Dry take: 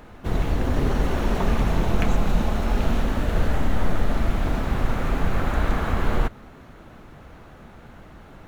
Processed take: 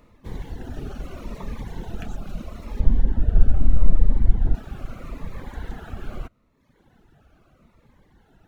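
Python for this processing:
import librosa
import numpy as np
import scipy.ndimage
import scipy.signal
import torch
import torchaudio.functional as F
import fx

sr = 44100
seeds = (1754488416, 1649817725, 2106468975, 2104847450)

y = fx.dereverb_blind(x, sr, rt60_s=1.1)
y = fx.tilt_eq(y, sr, slope=-3.5, at=(2.8, 4.55))
y = fx.notch_cascade(y, sr, direction='falling', hz=0.78)
y = y * librosa.db_to_amplitude(-8.5)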